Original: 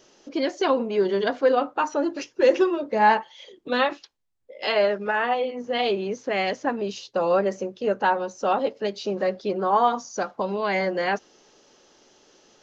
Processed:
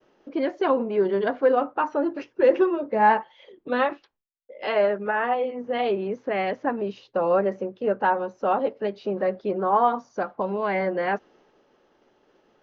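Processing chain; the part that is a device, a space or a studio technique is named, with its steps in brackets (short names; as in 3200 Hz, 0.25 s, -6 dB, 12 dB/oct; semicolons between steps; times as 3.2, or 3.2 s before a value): hearing-loss simulation (LPF 2000 Hz 12 dB/oct; expander -55 dBFS)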